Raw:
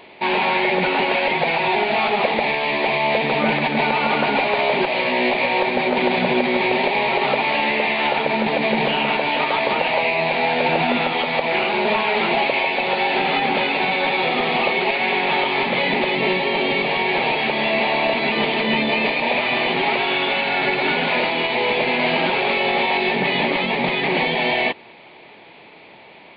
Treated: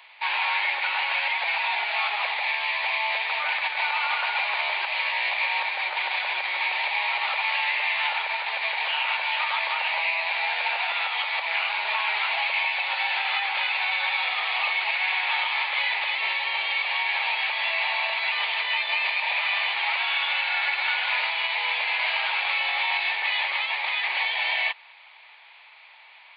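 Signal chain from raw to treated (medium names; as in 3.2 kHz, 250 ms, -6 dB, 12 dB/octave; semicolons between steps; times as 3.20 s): high-pass 970 Hz 24 dB/octave; trim -3 dB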